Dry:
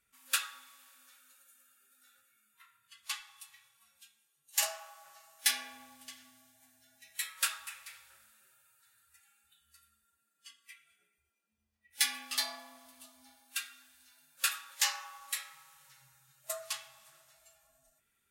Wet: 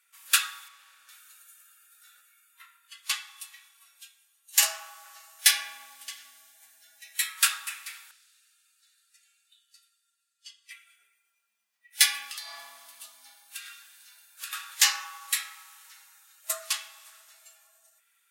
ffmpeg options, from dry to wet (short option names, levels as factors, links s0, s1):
-filter_complex "[0:a]asettb=1/sr,asplit=3[s0][s1][s2];[s0]atrim=end=0.684[s3];[s1]atrim=start=0.68:end=1.09,asetpts=PTS-STARTPTS,afade=t=in:d=0.004:c=qsin,afade=t=out:st=0.406:d=0.004:c=qsin,aemphasis=mode=reproduction:type=50kf[s4];[s2]atrim=start=1.086[s5];[s3][s4]acrossfade=d=0.004:c1=hsin:c2=qsin[s6];[s6][s5]acrossfade=d=0.004:c1=qsin:c2=hsin,asettb=1/sr,asplit=3[s7][s8][s9];[s7]atrim=end=8.114[s10];[s8]atrim=start=8.11:end=10.71,asetpts=PTS-STARTPTS,afade=t=in:d=0.004:c=qsin,afade=t=out:st=2.596:d=0.004:c=qsin,bandpass=f=4700:t=q:w=1.3[s11];[s9]atrim=start=10.706[s12];[s10][s11]acrossfade=d=0.004:c1=hsin:c2=qsin[s13];[s13][s12]acrossfade=d=0.004:c1=qsin:c2=hsin,asettb=1/sr,asplit=3[s14][s15][s16];[s14]atrim=end=12.304[s17];[s15]atrim=start=12.3:end=14.53,asetpts=PTS-STARTPTS,afade=t=in:d=0.004:c=qsin,afade=t=out:st=2.226:d=0.004:c=qsin,acompressor=threshold=0.00631:ratio=10:attack=3.2:release=140:knee=1:detection=peak[s18];[s16]atrim=start=14.526[s19];[s17][s18]acrossfade=d=0.004:c1=hsin:c2=qsin[s20];[s20][s19]acrossfade=d=0.004:c1=qsin:c2=hsin,highpass=1100,volume=2.82"